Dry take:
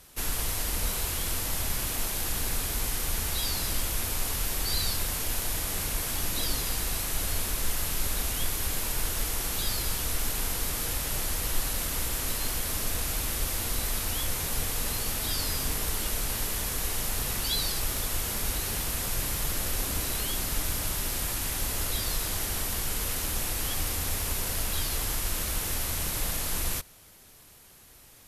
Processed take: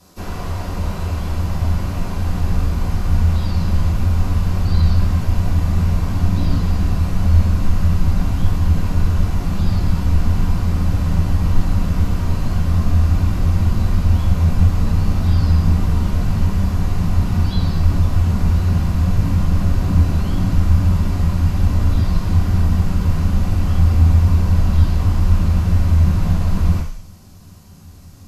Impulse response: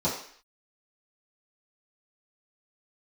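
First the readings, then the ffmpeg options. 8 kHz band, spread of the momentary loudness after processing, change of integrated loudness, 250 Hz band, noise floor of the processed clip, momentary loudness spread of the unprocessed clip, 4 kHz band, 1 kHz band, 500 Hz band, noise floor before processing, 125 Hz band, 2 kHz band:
−12.0 dB, 5 LU, +11.0 dB, +18.5 dB, −36 dBFS, 1 LU, −5.0 dB, +7.5 dB, +7.0 dB, −53 dBFS, +22.5 dB, +0.5 dB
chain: -filter_complex "[0:a]asubboost=boost=6.5:cutoff=160[link_01];[1:a]atrim=start_sample=2205,asetrate=48510,aresample=44100[link_02];[link_01][link_02]afir=irnorm=-1:irlink=0,acrossover=split=3200[link_03][link_04];[link_04]acompressor=threshold=-42dB:ratio=4:attack=1:release=60[link_05];[link_03][link_05]amix=inputs=2:normalize=0,volume=-4dB"

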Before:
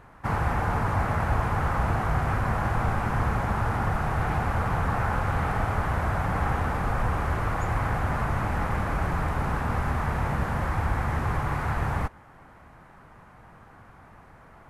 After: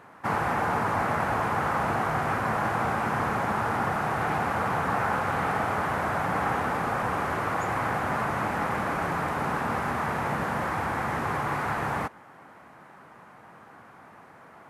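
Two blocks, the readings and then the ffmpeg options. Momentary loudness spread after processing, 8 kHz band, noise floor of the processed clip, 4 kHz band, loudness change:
2 LU, +2.5 dB, −51 dBFS, +2.5 dB, 0.0 dB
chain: -af "highpass=200,volume=2.5dB"

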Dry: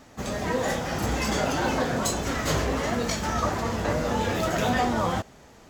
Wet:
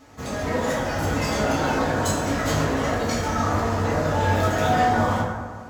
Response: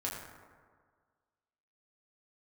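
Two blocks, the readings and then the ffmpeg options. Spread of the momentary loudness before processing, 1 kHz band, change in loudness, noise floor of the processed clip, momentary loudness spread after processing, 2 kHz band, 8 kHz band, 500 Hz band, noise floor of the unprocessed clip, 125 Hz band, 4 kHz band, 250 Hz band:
4 LU, +4.5 dB, +3.5 dB, −36 dBFS, 5 LU, +3.5 dB, 0.0 dB, +3.0 dB, −51 dBFS, +5.5 dB, +0.5 dB, +3.0 dB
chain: -filter_complex "[1:a]atrim=start_sample=2205[link_01];[0:a][link_01]afir=irnorm=-1:irlink=0"

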